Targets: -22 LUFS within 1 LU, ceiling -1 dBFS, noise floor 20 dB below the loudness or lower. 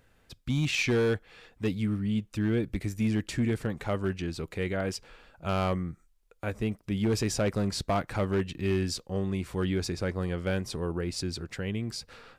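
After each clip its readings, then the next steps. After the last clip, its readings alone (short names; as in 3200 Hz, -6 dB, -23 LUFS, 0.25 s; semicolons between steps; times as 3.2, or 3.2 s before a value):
clipped 1.0%; flat tops at -21.0 dBFS; dropouts 1; longest dropout 1.4 ms; loudness -30.5 LUFS; peak -21.0 dBFS; loudness target -22.0 LUFS
-> clip repair -21 dBFS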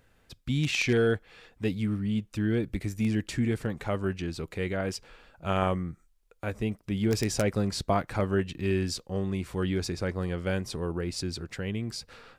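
clipped 0.0%; dropouts 1; longest dropout 1.4 ms
-> interpolate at 6.72, 1.4 ms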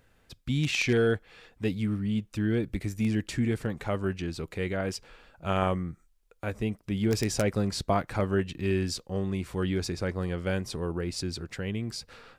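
dropouts 0; loudness -30.0 LUFS; peak -12.0 dBFS; loudness target -22.0 LUFS
-> gain +8 dB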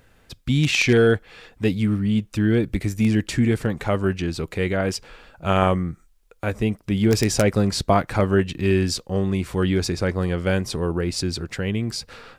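loudness -22.0 LUFS; peak -4.0 dBFS; noise floor -57 dBFS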